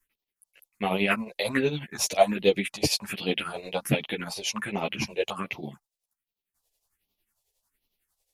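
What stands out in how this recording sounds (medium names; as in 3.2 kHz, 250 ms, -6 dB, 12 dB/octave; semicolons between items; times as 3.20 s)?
phasing stages 4, 1.3 Hz, lowest notch 210–1600 Hz; tremolo triangle 11 Hz, depth 75%; a shimmering, thickened sound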